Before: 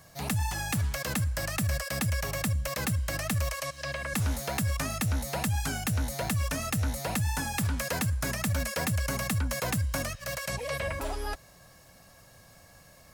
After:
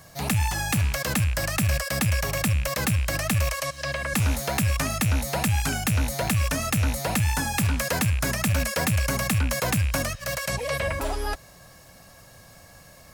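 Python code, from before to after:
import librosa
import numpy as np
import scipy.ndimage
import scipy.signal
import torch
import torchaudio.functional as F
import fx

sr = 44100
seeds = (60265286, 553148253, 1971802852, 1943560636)

y = fx.rattle_buzz(x, sr, strikes_db=-29.0, level_db=-28.0)
y = y * librosa.db_to_amplitude(5.5)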